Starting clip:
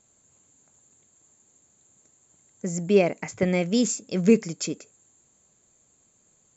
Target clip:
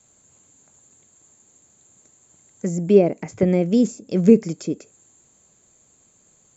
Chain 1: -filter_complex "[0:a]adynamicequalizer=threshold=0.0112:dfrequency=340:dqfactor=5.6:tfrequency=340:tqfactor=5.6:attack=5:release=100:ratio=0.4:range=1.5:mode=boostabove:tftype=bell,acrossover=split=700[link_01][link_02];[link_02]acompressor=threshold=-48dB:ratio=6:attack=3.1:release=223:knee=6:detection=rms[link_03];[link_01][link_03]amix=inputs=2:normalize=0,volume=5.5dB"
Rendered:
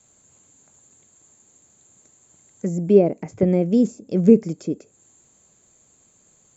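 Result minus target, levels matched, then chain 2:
downward compressor: peak gain reduction +6.5 dB
-filter_complex "[0:a]adynamicequalizer=threshold=0.0112:dfrequency=340:dqfactor=5.6:tfrequency=340:tqfactor=5.6:attack=5:release=100:ratio=0.4:range=1.5:mode=boostabove:tftype=bell,acrossover=split=700[link_01][link_02];[link_02]acompressor=threshold=-40dB:ratio=6:attack=3.1:release=223:knee=6:detection=rms[link_03];[link_01][link_03]amix=inputs=2:normalize=0,volume=5.5dB"

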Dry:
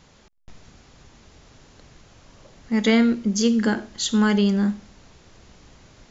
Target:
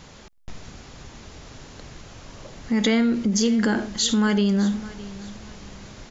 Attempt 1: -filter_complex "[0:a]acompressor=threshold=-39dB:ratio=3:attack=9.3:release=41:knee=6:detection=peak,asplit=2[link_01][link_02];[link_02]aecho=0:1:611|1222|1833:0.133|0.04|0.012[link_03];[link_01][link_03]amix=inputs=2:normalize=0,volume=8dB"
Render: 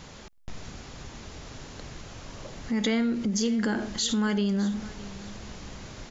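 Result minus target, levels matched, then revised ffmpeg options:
downward compressor: peak gain reduction +5.5 dB
-filter_complex "[0:a]acompressor=threshold=-30.5dB:ratio=3:attack=9.3:release=41:knee=6:detection=peak,asplit=2[link_01][link_02];[link_02]aecho=0:1:611|1222|1833:0.133|0.04|0.012[link_03];[link_01][link_03]amix=inputs=2:normalize=0,volume=8dB"

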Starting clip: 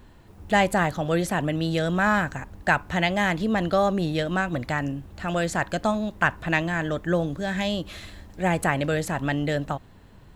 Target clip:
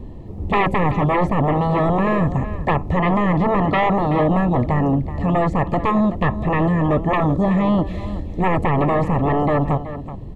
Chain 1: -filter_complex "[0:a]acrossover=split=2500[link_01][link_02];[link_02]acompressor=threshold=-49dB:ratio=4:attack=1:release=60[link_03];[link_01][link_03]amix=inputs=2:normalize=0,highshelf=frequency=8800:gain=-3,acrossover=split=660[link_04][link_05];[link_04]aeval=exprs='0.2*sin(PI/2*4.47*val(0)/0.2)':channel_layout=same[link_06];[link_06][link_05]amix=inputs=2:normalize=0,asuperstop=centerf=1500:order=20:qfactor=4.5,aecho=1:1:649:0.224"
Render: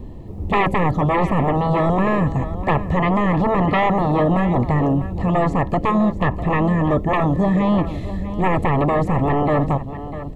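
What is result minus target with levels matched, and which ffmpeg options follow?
echo 272 ms late; 8,000 Hz band +3.0 dB
-filter_complex "[0:a]acrossover=split=2500[link_01][link_02];[link_02]acompressor=threshold=-49dB:ratio=4:attack=1:release=60[link_03];[link_01][link_03]amix=inputs=2:normalize=0,highshelf=frequency=8800:gain=-10.5,acrossover=split=660[link_04][link_05];[link_04]aeval=exprs='0.2*sin(PI/2*4.47*val(0)/0.2)':channel_layout=same[link_06];[link_06][link_05]amix=inputs=2:normalize=0,asuperstop=centerf=1500:order=20:qfactor=4.5,aecho=1:1:377:0.224"

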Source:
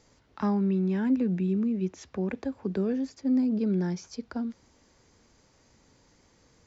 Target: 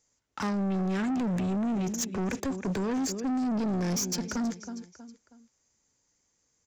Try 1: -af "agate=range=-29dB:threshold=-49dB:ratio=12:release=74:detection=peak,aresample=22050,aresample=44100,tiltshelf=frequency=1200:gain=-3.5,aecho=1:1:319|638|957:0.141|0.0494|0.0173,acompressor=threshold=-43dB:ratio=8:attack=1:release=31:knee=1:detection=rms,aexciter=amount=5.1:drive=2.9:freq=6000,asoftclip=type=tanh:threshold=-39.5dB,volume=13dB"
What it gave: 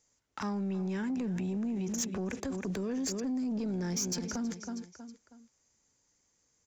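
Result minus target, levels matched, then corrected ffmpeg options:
downward compressor: peak gain reduction +10.5 dB
-af "agate=range=-29dB:threshold=-49dB:ratio=12:release=74:detection=peak,aresample=22050,aresample=44100,tiltshelf=frequency=1200:gain=-3.5,aecho=1:1:319|638|957:0.141|0.0494|0.0173,acompressor=threshold=-31dB:ratio=8:attack=1:release=31:knee=1:detection=rms,aexciter=amount=5.1:drive=2.9:freq=6000,asoftclip=type=tanh:threshold=-39.5dB,volume=13dB"

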